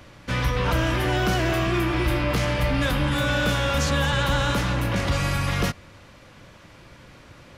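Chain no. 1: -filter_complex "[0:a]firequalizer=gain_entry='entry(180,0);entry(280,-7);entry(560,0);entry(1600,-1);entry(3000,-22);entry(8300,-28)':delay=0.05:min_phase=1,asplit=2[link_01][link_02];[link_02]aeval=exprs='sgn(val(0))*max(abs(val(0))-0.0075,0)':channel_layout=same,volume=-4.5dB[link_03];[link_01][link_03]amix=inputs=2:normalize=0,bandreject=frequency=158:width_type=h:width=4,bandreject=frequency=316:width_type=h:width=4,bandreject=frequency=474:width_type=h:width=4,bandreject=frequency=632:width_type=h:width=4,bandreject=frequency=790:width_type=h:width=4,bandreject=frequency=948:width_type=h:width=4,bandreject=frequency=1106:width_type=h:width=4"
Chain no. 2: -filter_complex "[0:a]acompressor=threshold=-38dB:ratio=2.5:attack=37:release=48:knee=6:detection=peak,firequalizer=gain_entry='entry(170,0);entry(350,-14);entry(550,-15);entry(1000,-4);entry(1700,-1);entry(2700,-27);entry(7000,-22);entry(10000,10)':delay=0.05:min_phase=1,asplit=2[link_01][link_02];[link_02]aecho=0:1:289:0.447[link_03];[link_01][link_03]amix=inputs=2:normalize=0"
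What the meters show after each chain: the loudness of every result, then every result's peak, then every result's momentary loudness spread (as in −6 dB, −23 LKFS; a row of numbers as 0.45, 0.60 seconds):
−21.5, −34.0 LKFS; −9.5, −21.0 dBFS; 3, 17 LU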